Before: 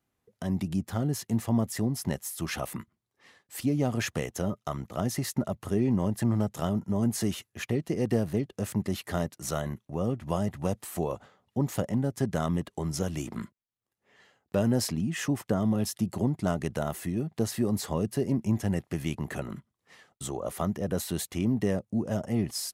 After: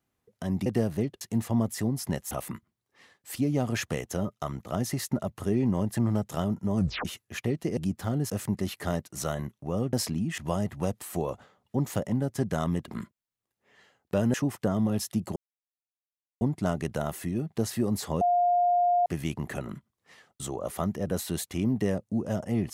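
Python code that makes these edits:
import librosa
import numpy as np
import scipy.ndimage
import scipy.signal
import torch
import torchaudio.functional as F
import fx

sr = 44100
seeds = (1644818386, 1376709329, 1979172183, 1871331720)

y = fx.edit(x, sr, fx.swap(start_s=0.66, length_s=0.53, other_s=8.02, other_length_s=0.55),
    fx.cut(start_s=2.29, length_s=0.27),
    fx.tape_stop(start_s=7.02, length_s=0.28),
    fx.cut(start_s=12.7, length_s=0.59),
    fx.move(start_s=14.75, length_s=0.45, to_s=10.2),
    fx.insert_silence(at_s=16.22, length_s=1.05),
    fx.bleep(start_s=18.02, length_s=0.85, hz=707.0, db=-20.0), tone=tone)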